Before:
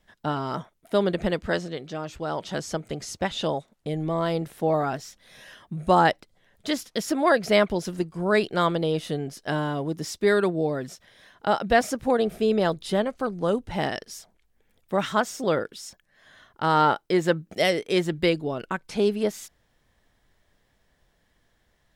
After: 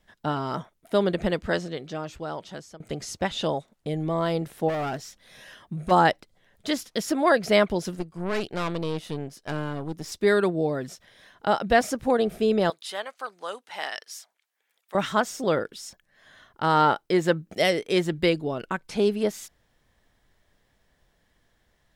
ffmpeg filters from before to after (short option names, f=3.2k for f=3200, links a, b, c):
-filter_complex "[0:a]asplit=3[a][b][c];[a]afade=t=out:st=4.68:d=0.02[d];[b]volume=25.5dB,asoftclip=hard,volume=-25.5dB,afade=t=in:st=4.68:d=0.02,afade=t=out:st=5.9:d=0.02[e];[c]afade=t=in:st=5.9:d=0.02[f];[d][e][f]amix=inputs=3:normalize=0,asettb=1/sr,asplit=3[g][h][i];[g]atrim=end=7.954[j];[h]atrim=start=7.95:end=10.12,asetpts=PTS-STARTPTS,afade=t=in:d=0.004:c=qsin,afade=t=out:st=2.166:d=0.004:c=qsin,aeval=exprs='(tanh(14.1*val(0)+0.8)-tanh(0.8))/14.1':c=same[k];[i]atrim=start=10.116[l];[j][k]acrossfade=d=0.004:c1=hsin:c2=qsin[m];[m][l]acrossfade=d=0.004:c1=qsin:c2=hsin,asettb=1/sr,asplit=3[n][o][p];[n]atrim=end=12.704[q];[o]atrim=start=12.7:end=14.95,asetpts=PTS-STARTPTS,afade=t=in:d=0.004:c=qsin,afade=t=out:st=2.246:d=0.004:c=qsin,highpass=1k[r];[p]atrim=start=14.946[s];[q][r]acrossfade=d=0.004:c1=hsin:c2=qsin[t];[t][s]acrossfade=d=0.004:c1=qsin:c2=hsin,asplit=2[u][v];[u]atrim=end=2.8,asetpts=PTS-STARTPTS,afade=t=out:st=1.98:d=0.82:silence=0.0944061[w];[v]atrim=start=2.8,asetpts=PTS-STARTPTS,afade=t=in:d=0.004:c=hsin:silence=0.0944061[x];[w][x]concat=n=2:v=0:a=1"